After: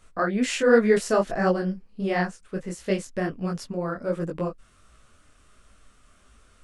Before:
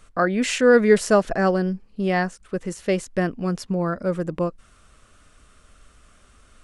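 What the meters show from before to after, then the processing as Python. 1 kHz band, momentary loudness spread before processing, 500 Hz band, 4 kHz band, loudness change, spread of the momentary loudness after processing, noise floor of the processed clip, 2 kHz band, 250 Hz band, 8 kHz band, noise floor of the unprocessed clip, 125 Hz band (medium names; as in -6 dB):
-3.5 dB, 12 LU, -3.5 dB, -3.5 dB, -3.5 dB, 13 LU, -59 dBFS, -3.5 dB, -3.5 dB, -4.0 dB, -55 dBFS, -4.0 dB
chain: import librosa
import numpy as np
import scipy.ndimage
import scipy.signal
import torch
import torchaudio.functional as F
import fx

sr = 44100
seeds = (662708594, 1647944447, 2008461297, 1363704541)

y = fx.detune_double(x, sr, cents=49)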